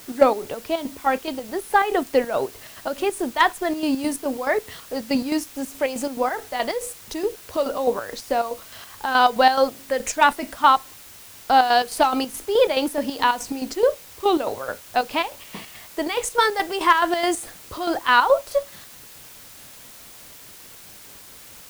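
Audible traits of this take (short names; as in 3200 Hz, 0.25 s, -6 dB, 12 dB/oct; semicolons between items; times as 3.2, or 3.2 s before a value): chopped level 4.7 Hz, depth 60%, duty 55%; a quantiser's noise floor 8-bit, dither triangular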